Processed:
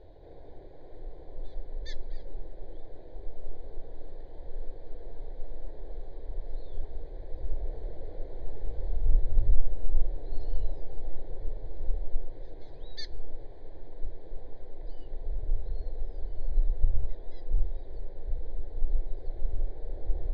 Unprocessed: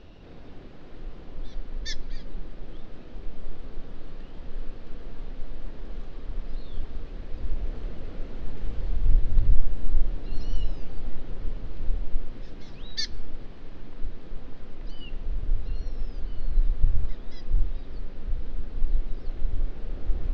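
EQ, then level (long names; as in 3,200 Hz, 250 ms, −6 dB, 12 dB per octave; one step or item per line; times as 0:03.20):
moving average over 16 samples
low-shelf EQ 410 Hz −8 dB
phaser with its sweep stopped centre 520 Hz, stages 4
+5.0 dB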